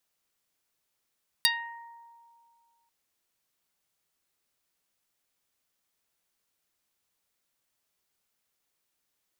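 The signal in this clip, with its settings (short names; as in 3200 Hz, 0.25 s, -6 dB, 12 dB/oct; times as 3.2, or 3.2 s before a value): plucked string A#5, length 1.44 s, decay 2.30 s, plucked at 0.12, dark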